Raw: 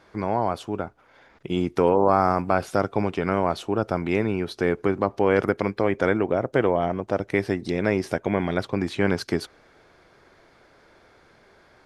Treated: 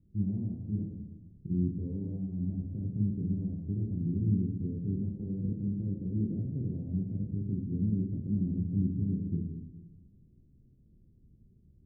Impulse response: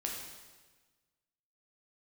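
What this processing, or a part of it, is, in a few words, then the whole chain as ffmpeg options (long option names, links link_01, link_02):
club heard from the street: -filter_complex "[0:a]alimiter=limit=-15dB:level=0:latency=1:release=78,lowpass=frequency=190:width=0.5412,lowpass=frequency=190:width=1.3066[link_01];[1:a]atrim=start_sample=2205[link_02];[link_01][link_02]afir=irnorm=-1:irlink=0,volume=3.5dB"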